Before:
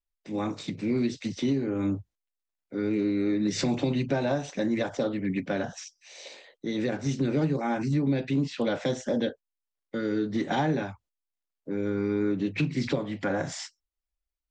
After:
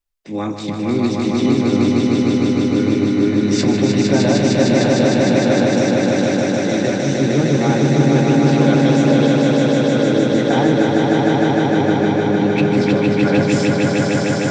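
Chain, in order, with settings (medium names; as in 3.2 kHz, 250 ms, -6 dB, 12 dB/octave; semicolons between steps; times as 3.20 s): echo with a slow build-up 153 ms, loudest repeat 5, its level -3 dB; trim +7 dB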